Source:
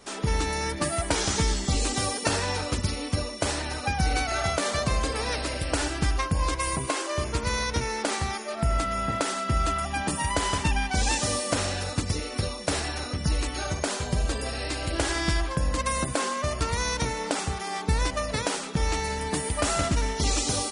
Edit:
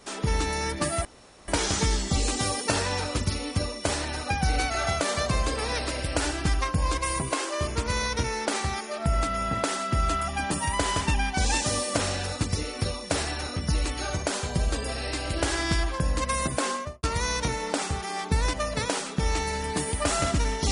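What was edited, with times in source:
1.05 insert room tone 0.43 s
16.28–16.6 studio fade out

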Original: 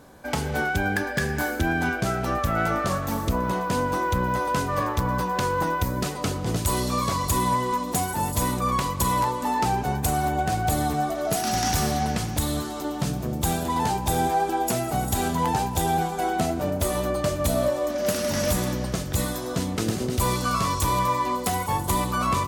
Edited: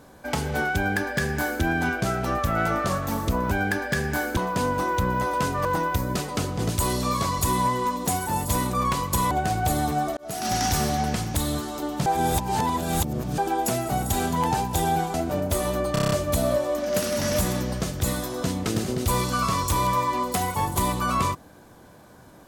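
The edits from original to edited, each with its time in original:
0.76–1.62 copy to 3.51
4.79–5.52 cut
9.18–10.33 cut
11.19–11.54 fade in
13.08–14.4 reverse
16.16–16.44 cut
17.23 stutter 0.03 s, 7 plays

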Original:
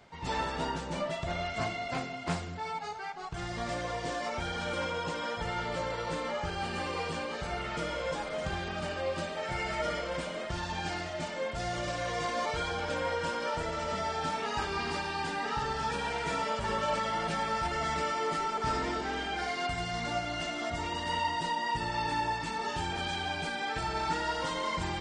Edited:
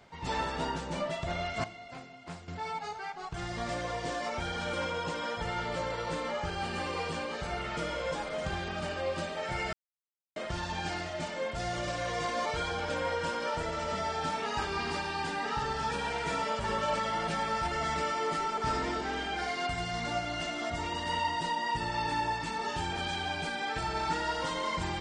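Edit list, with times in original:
1.64–2.48 gain -11 dB
9.73–10.36 mute

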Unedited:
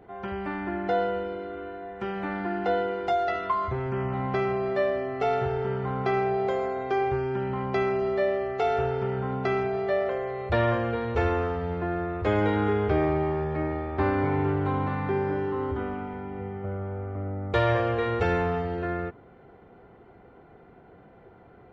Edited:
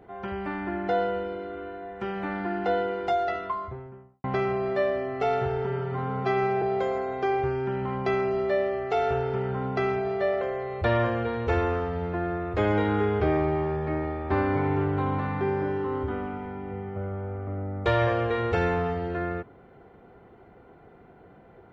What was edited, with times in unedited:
3.1–4.24 studio fade out
5.66–6.3 stretch 1.5×

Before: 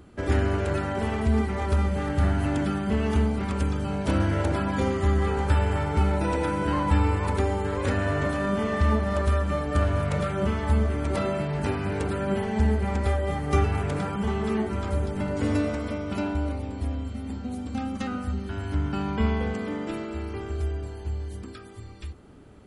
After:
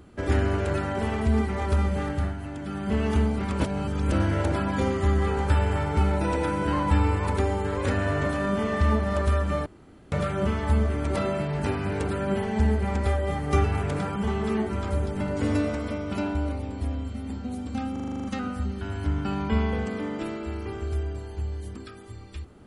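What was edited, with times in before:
2.02–2.96 dip -10 dB, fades 0.34 s
3.6–4.12 reverse
9.66–10.12 room tone
17.92 stutter 0.04 s, 9 plays

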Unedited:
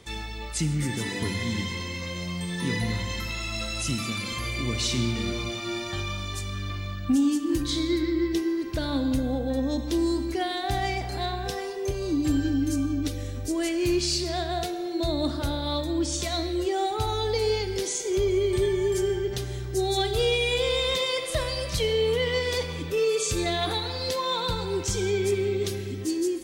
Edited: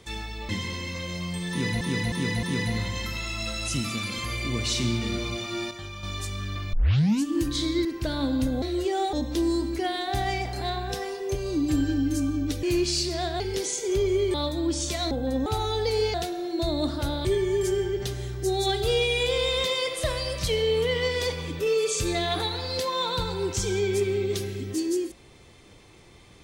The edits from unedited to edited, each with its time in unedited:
0.49–1.56 cut
2.57–2.88 loop, 4 plays
5.85–6.17 gain -7.5 dB
6.87 tape start 0.51 s
7.99–8.57 cut
9.34–9.69 swap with 16.43–16.94
13.19–13.78 cut
14.55–15.66 swap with 17.62–18.56

